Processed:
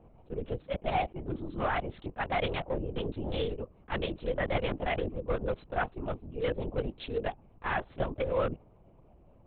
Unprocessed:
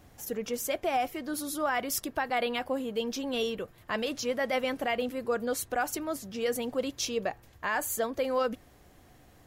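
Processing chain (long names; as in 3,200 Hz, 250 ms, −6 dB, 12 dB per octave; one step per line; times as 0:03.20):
adaptive Wiener filter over 25 samples
linear-prediction vocoder at 8 kHz whisper
level that may rise only so fast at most 490 dB per second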